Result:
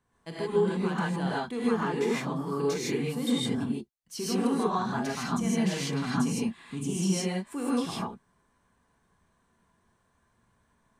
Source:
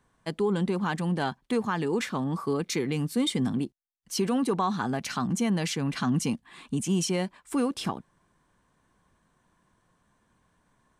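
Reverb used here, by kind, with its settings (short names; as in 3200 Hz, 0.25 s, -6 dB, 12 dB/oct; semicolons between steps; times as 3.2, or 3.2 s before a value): non-linear reverb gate 0.18 s rising, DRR -7.5 dB; gain -9 dB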